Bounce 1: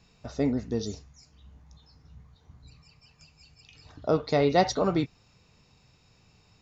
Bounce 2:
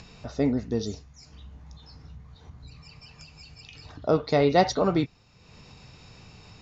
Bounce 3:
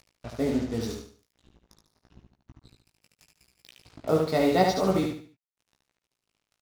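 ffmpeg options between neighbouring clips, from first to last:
-af "acompressor=mode=upward:threshold=-40dB:ratio=2.5,lowpass=6.6k,volume=2dB"
-af "acrusher=bits=5:mix=0:aa=0.5,flanger=delay=15.5:depth=3.6:speed=0.84,aecho=1:1:73|146|219|292:0.631|0.215|0.0729|0.0248"

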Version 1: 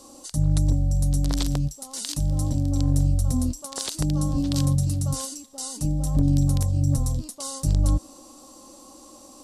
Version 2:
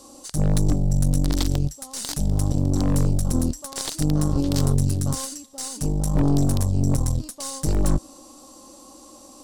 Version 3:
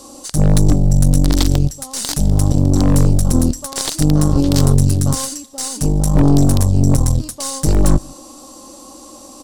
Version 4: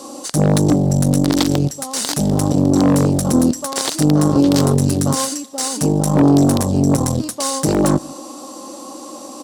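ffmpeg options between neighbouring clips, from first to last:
-af "aeval=exprs='0.282*(cos(1*acos(clip(val(0)/0.282,-1,1)))-cos(1*PI/2))+0.0891*(cos(4*acos(clip(val(0)/0.282,-1,1)))-cos(4*PI/2))+0.0631*(cos(5*acos(clip(val(0)/0.282,-1,1)))-cos(5*PI/2))+0.0282*(cos(7*acos(clip(val(0)/0.282,-1,1)))-cos(7*PI/2))':c=same,volume=-2dB"
-filter_complex "[0:a]asplit=2[a][b];[b]adelay=151.6,volume=-27dB,highshelf=f=4k:g=-3.41[c];[a][c]amix=inputs=2:normalize=0,volume=8dB"
-filter_complex "[0:a]highpass=210,highshelf=f=3.4k:g=-6.5,asplit=2[a][b];[b]alimiter=limit=-14dB:level=0:latency=1:release=74,volume=2dB[c];[a][c]amix=inputs=2:normalize=0"

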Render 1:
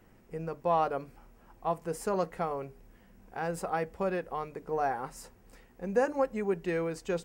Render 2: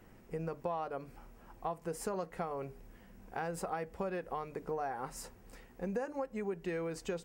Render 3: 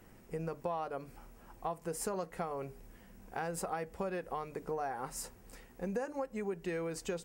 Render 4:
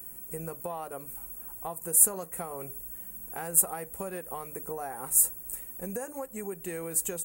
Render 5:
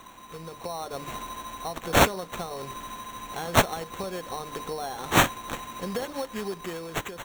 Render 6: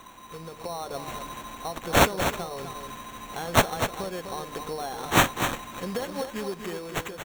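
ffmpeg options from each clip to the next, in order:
-af "acompressor=threshold=-36dB:ratio=6,volume=1.5dB"
-af "equalizer=f=11k:w=0.45:g=6"
-af "aexciter=amount=14.4:drive=7.1:freq=7.8k"
-af "acrusher=samples=9:mix=1:aa=0.000001,dynaudnorm=f=140:g=11:m=11dB,volume=-4.5dB"
-af "aecho=1:1:249:0.398"

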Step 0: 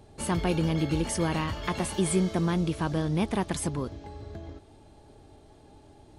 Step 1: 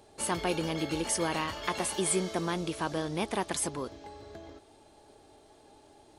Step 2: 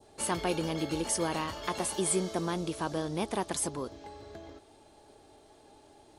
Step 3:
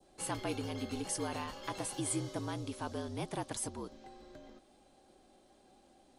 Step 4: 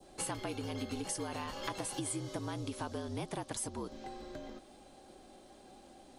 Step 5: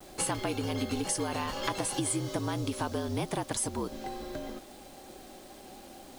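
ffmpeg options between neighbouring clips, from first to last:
-af "bass=f=250:g=-13,treble=f=4k:g=3"
-af "adynamicequalizer=threshold=0.00316:dfrequency=2200:dqfactor=1:tfrequency=2200:tqfactor=1:attack=5:release=100:ratio=0.375:range=2.5:mode=cutabove:tftype=bell"
-af "afreqshift=-56,volume=-6.5dB"
-af "acompressor=threshold=-43dB:ratio=6,volume=7.5dB"
-af "acrusher=bits=9:mix=0:aa=0.000001,volume=7dB"

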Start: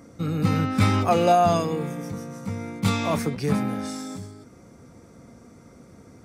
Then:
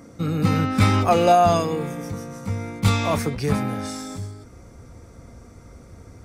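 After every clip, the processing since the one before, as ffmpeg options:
-af "asubboost=boost=8:cutoff=68,volume=3dB"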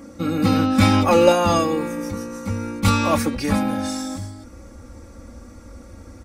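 -af "aecho=1:1:3.6:0.86,volume=1.5dB"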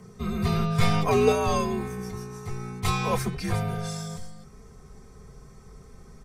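-af "afreqshift=-100,volume=-6.5dB"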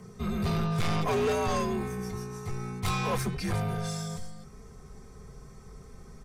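-af "asoftclip=type=tanh:threshold=-23.5dB"

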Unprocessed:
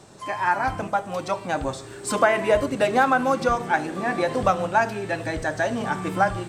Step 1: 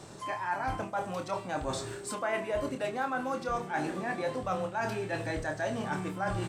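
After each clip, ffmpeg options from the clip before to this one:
-filter_complex "[0:a]areverse,acompressor=threshold=-31dB:ratio=6,areverse,asplit=2[a][b];[b]adelay=27,volume=-7dB[c];[a][c]amix=inputs=2:normalize=0"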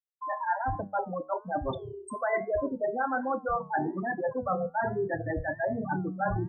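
-af "afftfilt=real='re*gte(hypot(re,im),0.0708)':imag='im*gte(hypot(re,im),0.0708)':win_size=1024:overlap=0.75,flanger=delay=9.9:depth=2.9:regen=83:speed=1.2:shape=sinusoidal,volume=8.5dB"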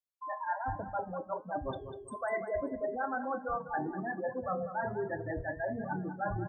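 -af "aecho=1:1:196|392|588:0.282|0.0789|0.0221,volume=-5.5dB"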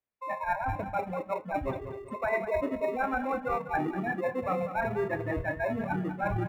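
-filter_complex "[0:a]asplit=2[a][b];[b]acrusher=samples=28:mix=1:aa=0.000001,volume=-7dB[c];[a][c]amix=inputs=2:normalize=0,highshelf=f=3.2k:t=q:w=1.5:g=-13.5,volume=2.5dB"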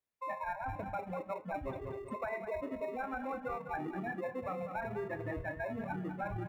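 -af "acompressor=threshold=-34dB:ratio=6,volume=-1.5dB"

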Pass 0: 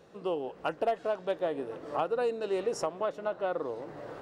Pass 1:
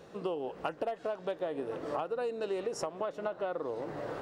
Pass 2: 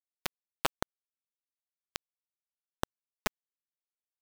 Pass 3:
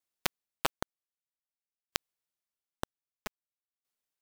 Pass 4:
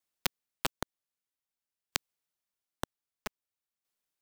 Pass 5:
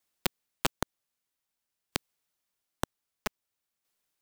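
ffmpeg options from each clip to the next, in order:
-af "acompressor=threshold=-36dB:ratio=6,volume=4.5dB"
-af "acrusher=bits=3:mix=0:aa=0.000001,volume=5dB"
-af "aeval=exprs='val(0)*pow(10,-24*if(lt(mod(0.52*n/s,1),2*abs(0.52)/1000),1-mod(0.52*n/s,1)/(2*abs(0.52)/1000),(mod(0.52*n/s,1)-2*abs(0.52)/1000)/(1-2*abs(0.52)/1000))/20)':c=same,volume=8dB"
-filter_complex "[0:a]acrossover=split=330|3000[a][b][c];[b]acompressor=threshold=-33dB:ratio=6[d];[a][d][c]amix=inputs=3:normalize=0,volume=1.5dB"
-af "asoftclip=type=tanh:threshold=-17.5dB,volume=6dB"

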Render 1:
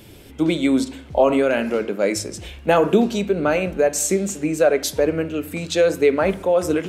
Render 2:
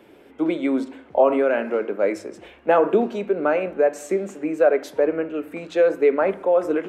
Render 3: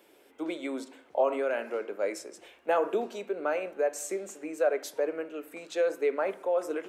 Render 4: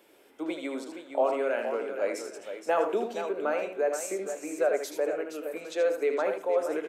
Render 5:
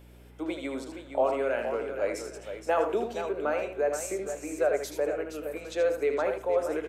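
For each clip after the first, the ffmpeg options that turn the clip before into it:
-filter_complex "[0:a]acrossover=split=250 2200:gain=0.0708 1 0.112[a][b][c];[a][b][c]amix=inputs=3:normalize=0"
-af "bass=f=250:g=-14,treble=f=4k:g=12,volume=-8.5dB"
-af "aecho=1:1:78|470|811:0.447|0.355|0.106"
-af "aeval=exprs='val(0)+0.00282*(sin(2*PI*60*n/s)+sin(2*PI*2*60*n/s)/2+sin(2*PI*3*60*n/s)/3+sin(2*PI*4*60*n/s)/4+sin(2*PI*5*60*n/s)/5)':c=same"

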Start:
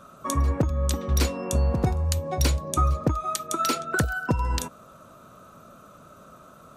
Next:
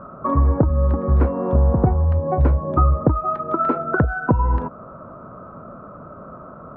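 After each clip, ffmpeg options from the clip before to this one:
-filter_complex "[0:a]lowpass=f=1.3k:w=0.5412,lowpass=f=1.3k:w=1.3066,asplit=2[a][b];[b]acompressor=threshold=-33dB:ratio=6,volume=2.5dB[c];[a][c]amix=inputs=2:normalize=0,volume=4.5dB"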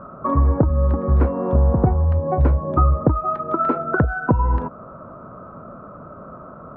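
-af anull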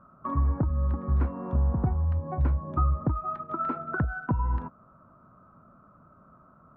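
-af "agate=range=-7dB:threshold=-27dB:ratio=16:detection=peak,equalizer=f=490:t=o:w=1.1:g=-10,volume=-8dB"

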